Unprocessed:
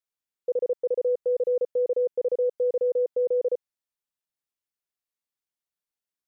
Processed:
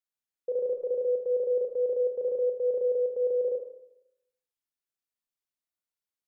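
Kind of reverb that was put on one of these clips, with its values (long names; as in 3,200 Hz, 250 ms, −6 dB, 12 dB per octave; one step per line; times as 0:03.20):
four-comb reverb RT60 0.83 s, combs from 26 ms, DRR 3.5 dB
level −5 dB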